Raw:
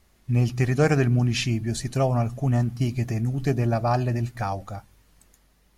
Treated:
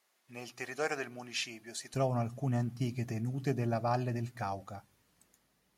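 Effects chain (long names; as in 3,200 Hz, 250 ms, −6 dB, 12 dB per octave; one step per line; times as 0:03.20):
high-pass filter 580 Hz 12 dB per octave, from 0:01.94 120 Hz
level −8 dB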